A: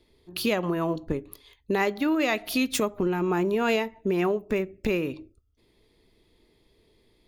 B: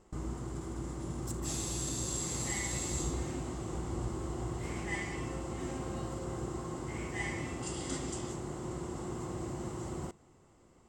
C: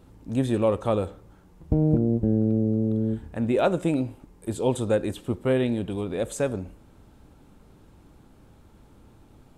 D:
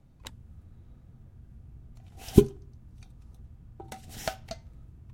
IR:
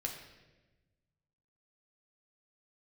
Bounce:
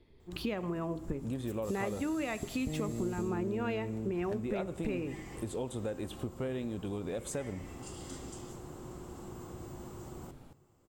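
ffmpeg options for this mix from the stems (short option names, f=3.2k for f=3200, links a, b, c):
-filter_complex "[0:a]bass=f=250:g=5,treble=f=4k:g=-13,volume=-3.5dB,asplit=2[a][b];[b]volume=-12dB[c];[1:a]equalizer=f=2k:w=7.3:g=-5,aexciter=amount=6.4:drive=2.6:freq=11k,adelay=200,volume=-8.5dB,asplit=2[d][e];[e]volume=-9.5dB[f];[2:a]acompressor=threshold=-28dB:ratio=2.5,adelay=950,volume=-0.5dB[g];[3:a]adelay=50,volume=-16.5dB[h];[4:a]atrim=start_sample=2205[i];[c][f]amix=inputs=2:normalize=0[j];[j][i]afir=irnorm=-1:irlink=0[k];[a][d][g][h][k]amix=inputs=5:normalize=0,acompressor=threshold=-39dB:ratio=2"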